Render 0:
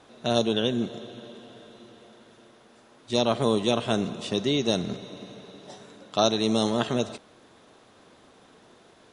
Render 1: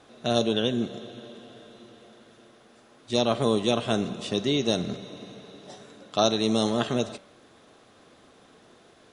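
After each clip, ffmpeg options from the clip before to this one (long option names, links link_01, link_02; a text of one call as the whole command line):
ffmpeg -i in.wav -af "bandreject=frequency=930:width=13,bandreject=frequency=192.4:width_type=h:width=4,bandreject=frequency=384.8:width_type=h:width=4,bandreject=frequency=577.2:width_type=h:width=4,bandreject=frequency=769.6:width_type=h:width=4,bandreject=frequency=962:width_type=h:width=4,bandreject=frequency=1154.4:width_type=h:width=4,bandreject=frequency=1346.8:width_type=h:width=4,bandreject=frequency=1539.2:width_type=h:width=4,bandreject=frequency=1731.6:width_type=h:width=4,bandreject=frequency=1924:width_type=h:width=4,bandreject=frequency=2116.4:width_type=h:width=4,bandreject=frequency=2308.8:width_type=h:width=4,bandreject=frequency=2501.2:width_type=h:width=4,bandreject=frequency=2693.6:width_type=h:width=4,bandreject=frequency=2886:width_type=h:width=4,bandreject=frequency=3078.4:width_type=h:width=4,bandreject=frequency=3270.8:width_type=h:width=4,bandreject=frequency=3463.2:width_type=h:width=4,bandreject=frequency=3655.6:width_type=h:width=4,bandreject=frequency=3848:width_type=h:width=4,bandreject=frequency=4040.4:width_type=h:width=4,bandreject=frequency=4232.8:width_type=h:width=4,bandreject=frequency=4425.2:width_type=h:width=4" out.wav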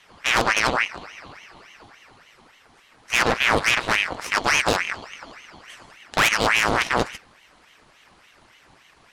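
ffmpeg -i in.wav -af "aeval=exprs='0.422*(cos(1*acos(clip(val(0)/0.422,-1,1)))-cos(1*PI/2))+0.0473*(cos(3*acos(clip(val(0)/0.422,-1,1)))-cos(3*PI/2))+0.211*(cos(6*acos(clip(val(0)/0.422,-1,1)))-cos(6*PI/2))+0.0473*(cos(8*acos(clip(val(0)/0.422,-1,1)))-cos(8*PI/2))':channel_layout=same,asoftclip=type=tanh:threshold=-14.5dB,aeval=exprs='val(0)*sin(2*PI*1500*n/s+1500*0.7/3.5*sin(2*PI*3.5*n/s))':channel_layout=same,volume=7.5dB" out.wav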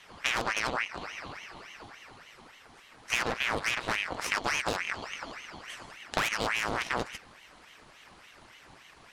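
ffmpeg -i in.wav -af "acompressor=threshold=-26dB:ratio=6" out.wav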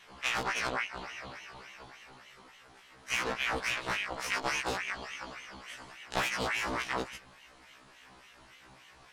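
ffmpeg -i in.wav -af "afftfilt=real='re*1.73*eq(mod(b,3),0)':imag='im*1.73*eq(mod(b,3),0)':win_size=2048:overlap=0.75" out.wav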